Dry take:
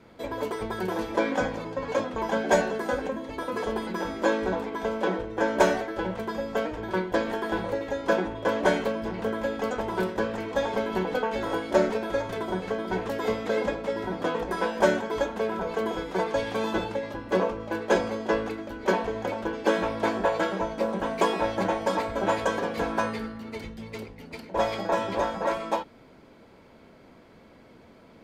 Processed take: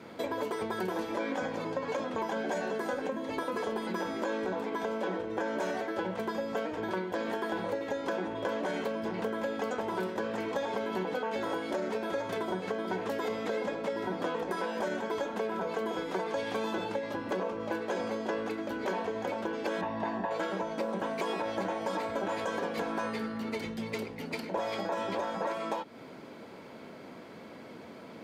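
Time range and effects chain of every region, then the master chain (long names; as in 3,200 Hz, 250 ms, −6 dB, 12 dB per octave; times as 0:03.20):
0:19.81–0:20.31: comb filter 1.1 ms, depth 59% + log-companded quantiser 8 bits + head-to-tape spacing loss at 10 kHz 20 dB
whole clip: high-pass filter 150 Hz 12 dB per octave; brickwall limiter −19 dBFS; downward compressor 4 to 1, threshold −38 dBFS; level +6 dB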